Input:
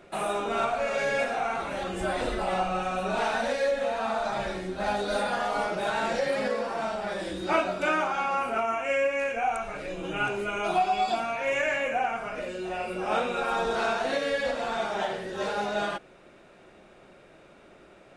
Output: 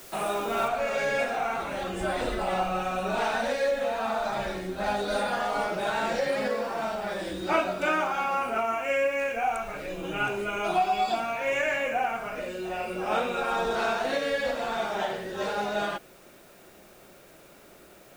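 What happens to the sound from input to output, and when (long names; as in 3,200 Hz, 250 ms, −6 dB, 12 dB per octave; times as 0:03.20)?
0:00.68: noise floor change −48 dB −59 dB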